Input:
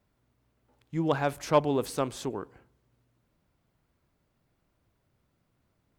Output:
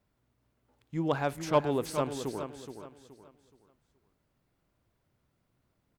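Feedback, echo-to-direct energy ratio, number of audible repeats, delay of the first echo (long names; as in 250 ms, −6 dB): 32%, −8.5 dB, 3, 423 ms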